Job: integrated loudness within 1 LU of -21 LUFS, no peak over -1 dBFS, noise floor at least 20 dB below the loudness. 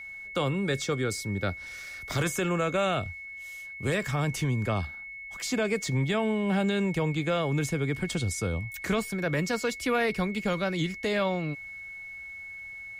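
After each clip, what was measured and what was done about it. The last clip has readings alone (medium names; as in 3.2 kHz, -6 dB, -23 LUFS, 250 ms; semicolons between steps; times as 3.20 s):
steady tone 2.2 kHz; tone level -39 dBFS; loudness -29.5 LUFS; peak level -16.0 dBFS; loudness target -21.0 LUFS
-> band-stop 2.2 kHz, Q 30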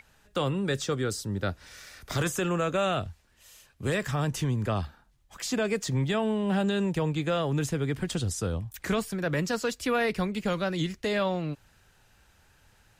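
steady tone not found; loudness -29.5 LUFS; peak level -16.5 dBFS; loudness target -21.0 LUFS
-> trim +8.5 dB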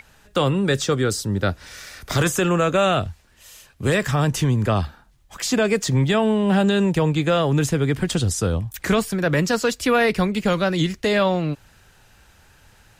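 loudness -21.0 LUFS; peak level -8.0 dBFS; noise floor -54 dBFS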